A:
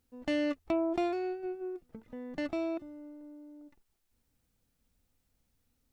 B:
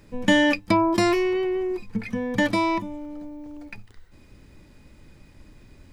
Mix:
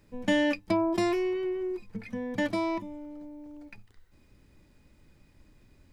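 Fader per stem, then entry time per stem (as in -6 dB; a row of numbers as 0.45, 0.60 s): -2.0, -9.5 dB; 0.00, 0.00 s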